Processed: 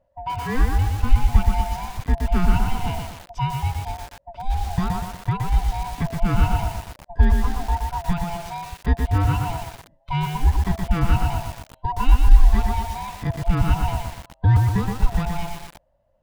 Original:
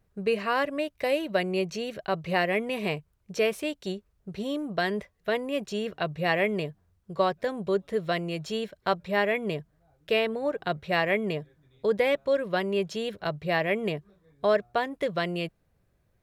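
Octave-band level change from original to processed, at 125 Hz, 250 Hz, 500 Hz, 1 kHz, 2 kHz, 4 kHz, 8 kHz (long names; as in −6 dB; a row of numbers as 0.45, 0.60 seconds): +17.5 dB, +4.0 dB, −9.0 dB, +5.5 dB, −4.0 dB, −2.0 dB, can't be measured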